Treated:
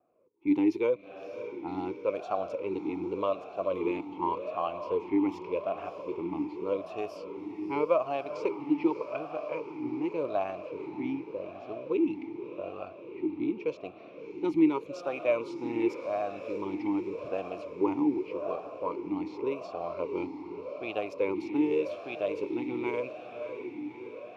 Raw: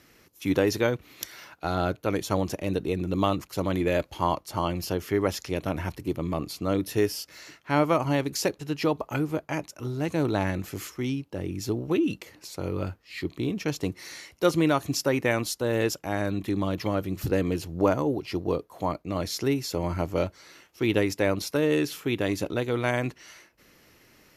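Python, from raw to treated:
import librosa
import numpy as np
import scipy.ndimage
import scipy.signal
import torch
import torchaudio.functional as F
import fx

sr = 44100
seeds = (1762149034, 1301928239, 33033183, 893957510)

y = np.where(x < 0.0, 10.0 ** (-3.0 / 20.0) * x, x)
y = fx.env_lowpass(y, sr, base_hz=630.0, full_db=-22.5)
y = fx.echo_diffused(y, sr, ms=614, feedback_pct=69, wet_db=-10)
y = fx.vibrato(y, sr, rate_hz=2.3, depth_cents=34.0)
y = fx.vowel_sweep(y, sr, vowels='a-u', hz=0.86)
y = F.gain(torch.from_numpy(y), 6.0).numpy()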